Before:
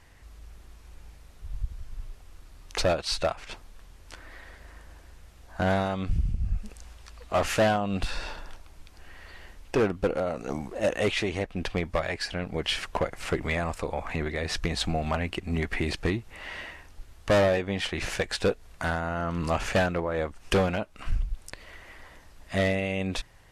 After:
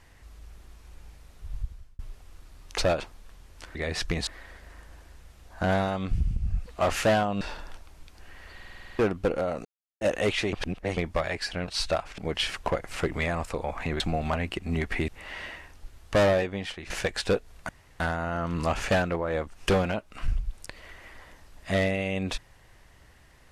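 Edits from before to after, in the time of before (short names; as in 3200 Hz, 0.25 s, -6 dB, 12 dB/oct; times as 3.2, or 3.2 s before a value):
1.58–1.99 fade out
3–3.5 move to 12.47
6.64–7.19 cut
7.94–8.2 cut
9.33 stutter in place 0.05 s, 9 plays
10.44–10.8 mute
11.32–11.76 reverse
14.29–14.81 move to 4.25
15.89–16.23 cut
17.51–18.05 fade out, to -13.5 dB
18.84 insert room tone 0.31 s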